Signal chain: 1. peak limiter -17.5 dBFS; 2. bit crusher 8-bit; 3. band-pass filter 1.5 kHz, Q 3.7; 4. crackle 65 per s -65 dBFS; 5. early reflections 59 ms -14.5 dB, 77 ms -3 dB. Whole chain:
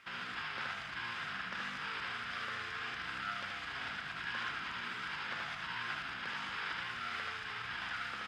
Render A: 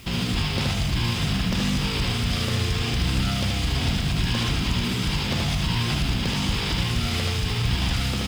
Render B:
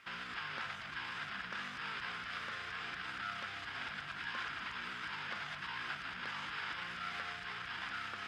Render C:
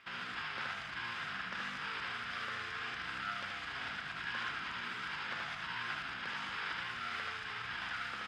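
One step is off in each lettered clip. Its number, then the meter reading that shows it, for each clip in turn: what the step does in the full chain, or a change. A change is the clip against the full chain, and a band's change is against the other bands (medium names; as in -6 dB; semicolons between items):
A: 3, 2 kHz band -16.0 dB; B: 5, loudness change -2.0 LU; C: 2, distortion -28 dB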